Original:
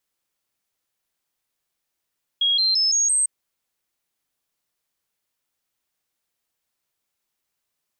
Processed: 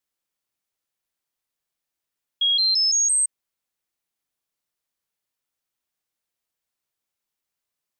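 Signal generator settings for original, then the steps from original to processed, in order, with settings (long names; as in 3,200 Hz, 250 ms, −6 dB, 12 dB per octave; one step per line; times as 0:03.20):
stepped sweep 3,290 Hz up, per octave 3, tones 5, 0.17 s, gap 0.00 s −16.5 dBFS
expander for the loud parts 1.5 to 1, over −30 dBFS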